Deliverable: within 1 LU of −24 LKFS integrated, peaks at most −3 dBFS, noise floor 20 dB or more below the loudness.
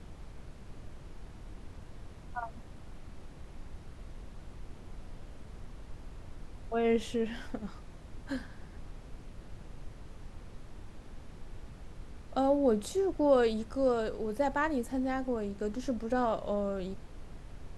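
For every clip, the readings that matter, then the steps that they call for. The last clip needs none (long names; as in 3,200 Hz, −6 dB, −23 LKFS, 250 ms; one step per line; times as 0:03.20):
background noise floor −50 dBFS; target noise floor −52 dBFS; integrated loudness −32.0 LKFS; sample peak −14.0 dBFS; target loudness −24.0 LKFS
→ noise reduction from a noise print 6 dB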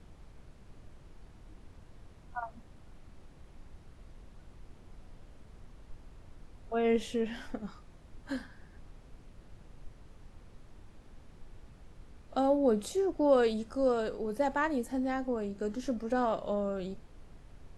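background noise floor −56 dBFS; integrated loudness −32.0 LKFS; sample peak −14.0 dBFS; target loudness −24.0 LKFS
→ level +8 dB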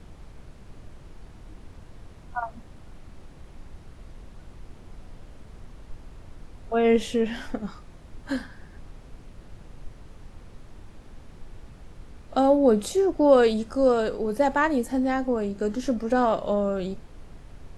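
integrated loudness −24.0 LKFS; sample peak −6.0 dBFS; background noise floor −48 dBFS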